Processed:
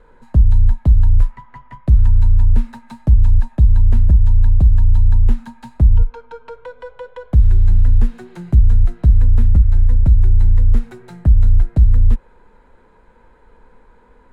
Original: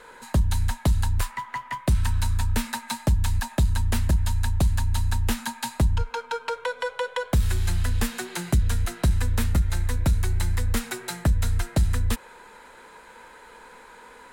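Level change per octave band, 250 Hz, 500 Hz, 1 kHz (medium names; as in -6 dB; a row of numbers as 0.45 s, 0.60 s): +2.5 dB, -3.0 dB, -7.0 dB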